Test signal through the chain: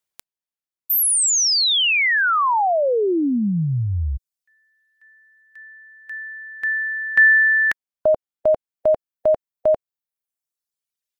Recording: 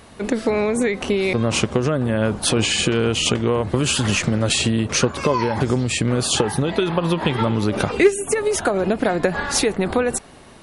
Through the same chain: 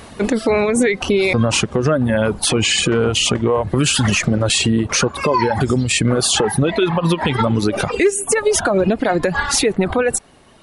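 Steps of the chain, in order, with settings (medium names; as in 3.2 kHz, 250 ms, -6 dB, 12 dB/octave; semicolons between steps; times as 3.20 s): reverb removal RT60 1.9 s; peak limiter -14 dBFS; trim +7.5 dB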